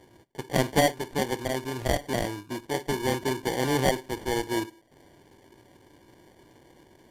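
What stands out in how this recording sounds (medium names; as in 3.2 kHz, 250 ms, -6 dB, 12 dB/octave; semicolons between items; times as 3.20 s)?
aliases and images of a low sample rate 1.3 kHz, jitter 0%; AAC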